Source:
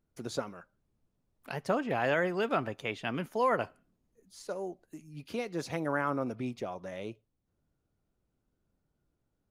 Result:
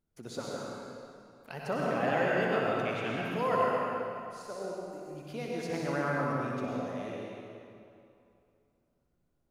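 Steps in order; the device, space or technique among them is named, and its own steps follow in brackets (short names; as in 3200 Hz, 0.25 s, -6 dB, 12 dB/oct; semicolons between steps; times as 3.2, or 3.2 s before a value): tunnel (flutter echo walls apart 10.7 m, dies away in 0.42 s; reverb RT60 2.6 s, pre-delay 90 ms, DRR -4 dB); gain -5 dB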